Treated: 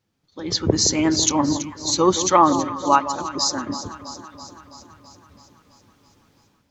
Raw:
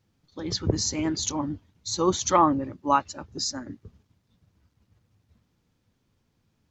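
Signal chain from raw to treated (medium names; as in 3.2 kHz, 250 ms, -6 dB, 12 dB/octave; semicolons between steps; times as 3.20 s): bass shelf 140 Hz -9.5 dB; level rider gain up to 16 dB; on a send: echo whose repeats swap between lows and highs 165 ms, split 1.1 kHz, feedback 79%, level -10.5 dB; on the sum: trim -1 dB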